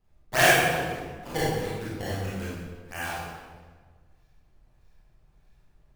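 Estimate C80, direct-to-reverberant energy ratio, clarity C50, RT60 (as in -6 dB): 0.5 dB, -9.0 dB, -3.0 dB, 1.5 s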